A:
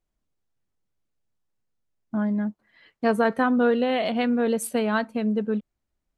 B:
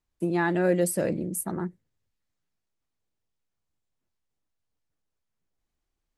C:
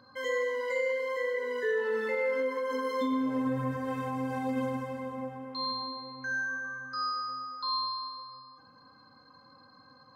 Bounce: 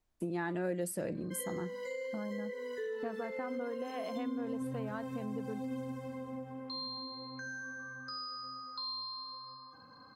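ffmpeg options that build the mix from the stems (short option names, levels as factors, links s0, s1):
-filter_complex "[0:a]equalizer=f=740:w=0.39:g=6.5,acompressor=threshold=0.0447:ratio=2.5,highshelf=f=4600:g=-9,volume=0.473[s0];[1:a]bandreject=f=200.3:t=h:w=4,bandreject=f=400.6:t=h:w=4,bandreject=f=600.9:t=h:w=4,bandreject=f=801.2:t=h:w=4,bandreject=f=1001.5:t=h:w=4,bandreject=f=1201.8:t=h:w=4,bandreject=f=1402.1:t=h:w=4,bandreject=f=1602.4:t=h:w=4,bandreject=f=1802.7:t=h:w=4,bandreject=f=2003:t=h:w=4,bandreject=f=2203.3:t=h:w=4,bandreject=f=2403.6:t=h:w=4,bandreject=f=2603.9:t=h:w=4,bandreject=f=2804.2:t=h:w=4,bandreject=f=3004.5:t=h:w=4,bandreject=f=3204.8:t=h:w=4,bandreject=f=3405.1:t=h:w=4,bandreject=f=3605.4:t=h:w=4,bandreject=f=3805.7:t=h:w=4,bandreject=f=4006:t=h:w=4,volume=1[s1];[2:a]acrossover=split=490|3000[s2][s3][s4];[s3]acompressor=threshold=0.00224:ratio=2[s5];[s2][s5][s4]amix=inputs=3:normalize=0,adelay=1150,volume=1.12[s6];[s0][s1][s6]amix=inputs=3:normalize=0,acompressor=threshold=0.00794:ratio=2"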